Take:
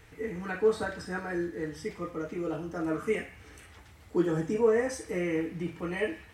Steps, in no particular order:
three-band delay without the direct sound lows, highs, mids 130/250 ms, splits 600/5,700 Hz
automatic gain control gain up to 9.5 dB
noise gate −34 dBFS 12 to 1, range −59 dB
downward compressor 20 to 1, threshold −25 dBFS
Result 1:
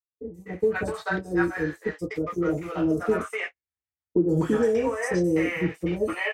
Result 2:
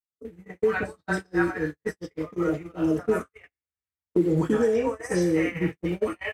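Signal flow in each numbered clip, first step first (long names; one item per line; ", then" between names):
downward compressor, then noise gate, then automatic gain control, then three-band delay without the direct sound
downward compressor, then three-band delay without the direct sound, then noise gate, then automatic gain control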